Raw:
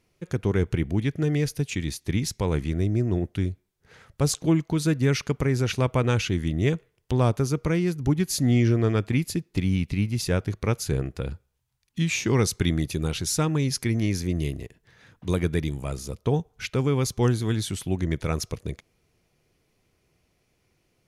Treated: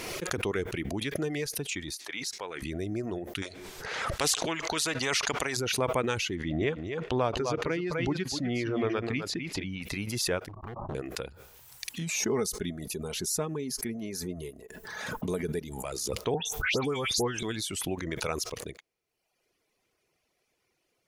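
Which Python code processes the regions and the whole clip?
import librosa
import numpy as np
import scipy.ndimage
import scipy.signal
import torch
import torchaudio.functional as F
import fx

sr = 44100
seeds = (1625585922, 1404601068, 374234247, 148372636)

y = fx.chain(x, sr, fx.highpass(hz=1200.0, slope=6),
    fx.high_shelf(hz=8100.0, db=-9.0), at=(1.95, 2.62))
y = fx.chain(y, sr, fx.lowpass(hz=7600.0, slope=12),
    fx.spectral_comp(ratio=2.0), at=(3.42, 5.57))
y = fx.chain(y, sr, fx.lowpass(hz=3700.0, slope=12),
    fx.echo_single(ms=251, db=-8.0), at=(6.35, 9.82))
y = fx.chain(y, sr, fx.steep_lowpass(hz=1200.0, slope=96),
    fx.comb(ms=1.1, depth=0.91),
    fx.overload_stage(gain_db=26.5), at=(10.48, 10.95))
y = fx.chain(y, sr, fx.peak_eq(hz=2700.0, db=-11.5, octaves=2.8),
    fx.comb(ms=4.7, depth=0.49), at=(12.0, 15.84))
y = fx.chain(y, sr, fx.dispersion(late='highs', ms=125.0, hz=2600.0),
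    fx.band_squash(depth_pct=70), at=(16.34, 17.43))
y = fx.dereverb_blind(y, sr, rt60_s=1.0)
y = fx.bass_treble(y, sr, bass_db=-14, treble_db=0)
y = fx.pre_swell(y, sr, db_per_s=28.0)
y = y * librosa.db_to_amplitude(-1.5)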